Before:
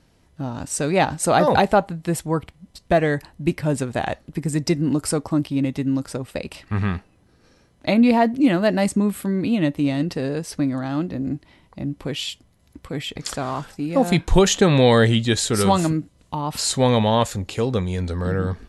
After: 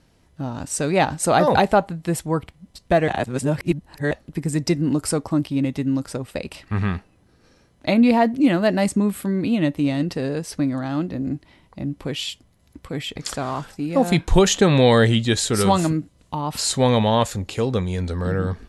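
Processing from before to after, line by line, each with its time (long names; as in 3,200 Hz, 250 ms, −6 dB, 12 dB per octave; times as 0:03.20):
0:03.08–0:04.11: reverse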